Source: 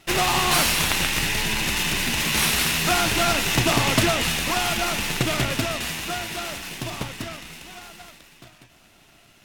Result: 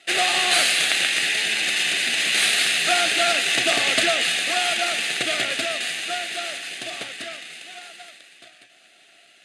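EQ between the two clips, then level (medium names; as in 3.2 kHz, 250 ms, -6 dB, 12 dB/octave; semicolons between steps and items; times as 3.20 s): cabinet simulation 460–9700 Hz, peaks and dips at 710 Hz +8 dB, 1.1 kHz +6 dB, 1.7 kHz +4 dB, 3.9 kHz +3 dB, 5.6 kHz +6 dB, 9.1 kHz +5 dB; peaking EQ 5.5 kHz +13 dB 0.7 oct; static phaser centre 2.4 kHz, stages 4; +1.5 dB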